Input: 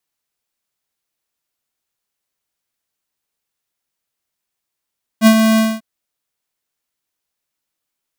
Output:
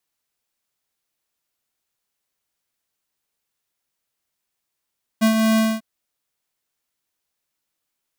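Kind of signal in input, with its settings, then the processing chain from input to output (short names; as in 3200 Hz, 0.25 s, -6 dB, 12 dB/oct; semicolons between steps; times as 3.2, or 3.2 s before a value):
ADSR square 221 Hz, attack 54 ms, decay 72 ms, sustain -6 dB, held 0.37 s, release 0.226 s -6 dBFS
compressor 6:1, threshold -17 dBFS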